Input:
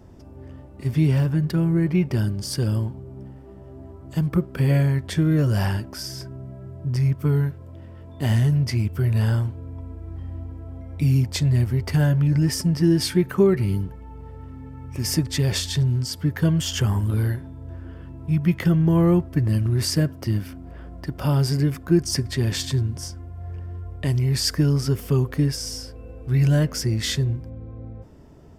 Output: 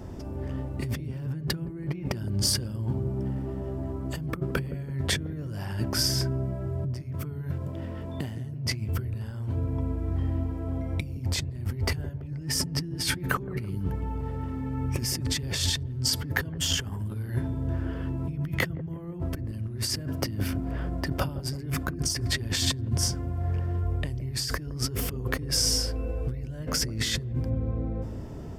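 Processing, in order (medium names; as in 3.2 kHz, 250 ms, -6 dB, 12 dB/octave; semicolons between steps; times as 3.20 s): compressor with a negative ratio -31 dBFS, ratio -1; feedback echo behind a low-pass 166 ms, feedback 46%, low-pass 410 Hz, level -6 dB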